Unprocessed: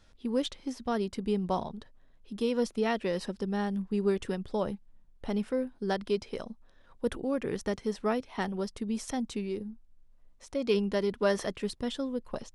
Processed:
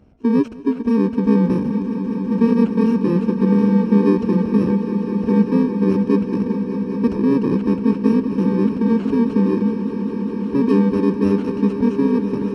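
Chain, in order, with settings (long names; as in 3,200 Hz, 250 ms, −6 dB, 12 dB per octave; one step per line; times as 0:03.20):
samples in bit-reversed order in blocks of 64 samples
high-pass filter 52 Hz
parametric band 290 Hz +14.5 dB 2.9 octaves
in parallel at +2 dB: brickwall limiter −18.5 dBFS, peak gain reduction 12 dB
on the sum: head-to-tape spacing loss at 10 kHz 33 dB
on a send: echo that builds up and dies away 200 ms, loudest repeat 5, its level −13.5 dB
on the sum: level +1.5 dB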